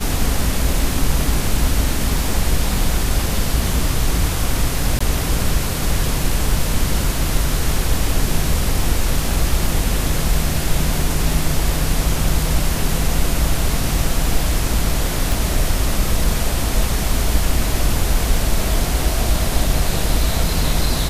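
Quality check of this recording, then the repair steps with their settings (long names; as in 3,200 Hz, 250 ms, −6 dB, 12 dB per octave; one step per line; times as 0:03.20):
0:04.99–0:05.00: drop-out 15 ms
0:15.32: click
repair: click removal
repair the gap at 0:04.99, 15 ms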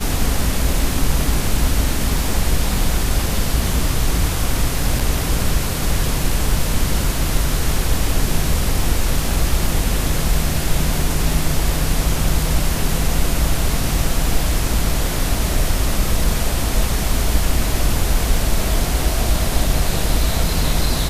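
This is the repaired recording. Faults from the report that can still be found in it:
none of them is left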